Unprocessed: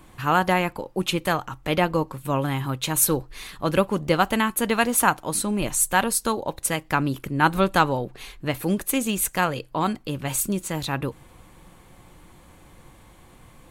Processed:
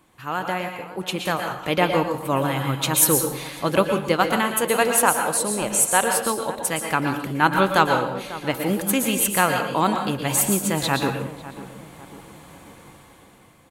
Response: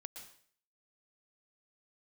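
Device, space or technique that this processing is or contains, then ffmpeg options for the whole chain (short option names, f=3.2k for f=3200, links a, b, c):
far laptop microphone: -filter_complex "[0:a]asettb=1/sr,asplit=3[a][b][c];[a]atrim=end=4.494[d];[b]atrim=start=4.49:end=6.12,asetpts=PTS-STARTPTS,afade=t=in:d=0.004:c=qsin,afade=t=out:st=1.626:d=0.004:c=qsin,equalizer=f=250:t=o:w=1:g=-4,equalizer=f=500:t=o:w=1:g=6,equalizer=f=8k:t=o:w=1:g=4[e];[c]atrim=start=6.116[f];[d][e]acrossfade=d=0.004:c1=hsin:c2=qsin[g];[g][f]acrossfade=d=0.004:c1=qsin:c2=hsin[h];[1:a]atrim=start_sample=2205[i];[h][i]afir=irnorm=-1:irlink=0,highpass=f=170:p=1,dynaudnorm=f=380:g=7:m=14dB,asplit=2[j][k];[k]adelay=546,lowpass=f=1.4k:p=1,volume=-14.5dB,asplit=2[l][m];[m]adelay=546,lowpass=f=1.4k:p=1,volume=0.49,asplit=2[n][o];[o]adelay=546,lowpass=f=1.4k:p=1,volume=0.49,asplit=2[p][q];[q]adelay=546,lowpass=f=1.4k:p=1,volume=0.49,asplit=2[r][s];[s]adelay=546,lowpass=f=1.4k:p=1,volume=0.49[t];[j][l][n][p][r][t]amix=inputs=6:normalize=0,volume=-1dB"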